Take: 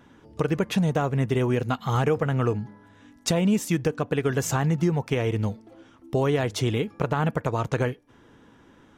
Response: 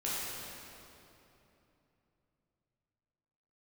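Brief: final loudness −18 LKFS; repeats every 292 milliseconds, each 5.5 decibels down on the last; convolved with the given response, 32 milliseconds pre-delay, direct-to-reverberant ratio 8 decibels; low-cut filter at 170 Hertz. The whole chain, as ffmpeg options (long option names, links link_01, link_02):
-filter_complex "[0:a]highpass=170,aecho=1:1:292|584|876|1168|1460|1752|2044:0.531|0.281|0.149|0.079|0.0419|0.0222|0.0118,asplit=2[link_01][link_02];[1:a]atrim=start_sample=2205,adelay=32[link_03];[link_02][link_03]afir=irnorm=-1:irlink=0,volume=-14dB[link_04];[link_01][link_04]amix=inputs=2:normalize=0,volume=7dB"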